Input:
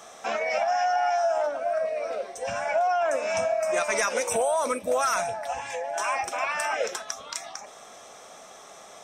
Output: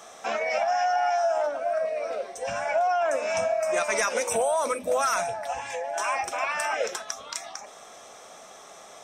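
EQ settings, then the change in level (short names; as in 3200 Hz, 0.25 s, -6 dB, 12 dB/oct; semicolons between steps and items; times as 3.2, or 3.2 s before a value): notches 50/100/150/200/250 Hz; 0.0 dB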